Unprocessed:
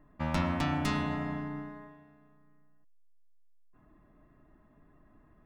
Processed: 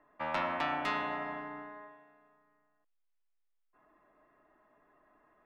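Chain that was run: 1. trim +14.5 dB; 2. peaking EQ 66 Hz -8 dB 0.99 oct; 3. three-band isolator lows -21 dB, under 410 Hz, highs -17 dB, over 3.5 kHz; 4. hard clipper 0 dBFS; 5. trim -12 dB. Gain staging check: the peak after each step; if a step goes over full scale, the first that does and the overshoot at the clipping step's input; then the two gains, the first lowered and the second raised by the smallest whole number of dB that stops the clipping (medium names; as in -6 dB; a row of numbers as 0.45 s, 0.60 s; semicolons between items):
-3.0 dBFS, -3.0 dBFS, -6.0 dBFS, -6.0 dBFS, -18.0 dBFS; nothing clips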